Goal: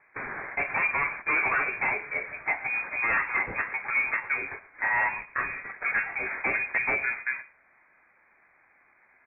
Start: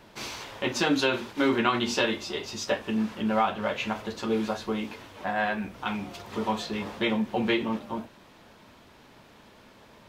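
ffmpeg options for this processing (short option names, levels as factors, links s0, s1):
-filter_complex "[0:a]highpass=400,agate=range=0.2:threshold=0.00708:ratio=16:detection=peak,asplit=2[s0][s1];[s1]acompressor=threshold=0.0126:ratio=6,volume=0.891[s2];[s0][s2]amix=inputs=2:normalize=0,aeval=exprs='0.0841*(abs(mod(val(0)/0.0841+3,4)-2)-1)':c=same,asplit=2[s3][s4];[s4]aecho=0:1:123:0.126[s5];[s3][s5]amix=inputs=2:normalize=0,asetrate=48000,aresample=44100,lowpass=f=2300:t=q:w=0.5098,lowpass=f=2300:t=q:w=0.6013,lowpass=f=2300:t=q:w=0.9,lowpass=f=2300:t=q:w=2.563,afreqshift=-2700,volume=1.41"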